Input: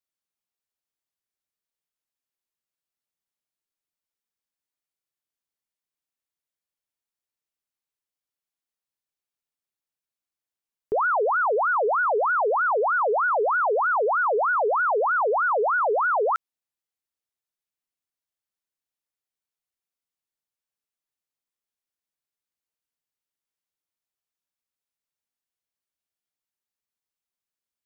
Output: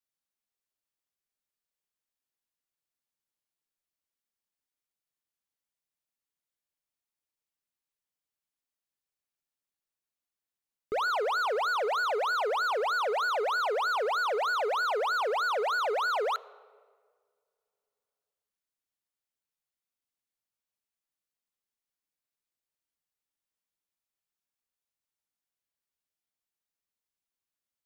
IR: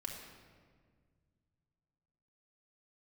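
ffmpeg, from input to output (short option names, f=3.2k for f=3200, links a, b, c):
-filter_complex "[0:a]volume=25.5dB,asoftclip=hard,volume=-25.5dB,asplit=2[a][b];[1:a]atrim=start_sample=2205,lowshelf=f=190:g=8[c];[b][c]afir=irnorm=-1:irlink=0,volume=-15dB[d];[a][d]amix=inputs=2:normalize=0,volume=-3dB"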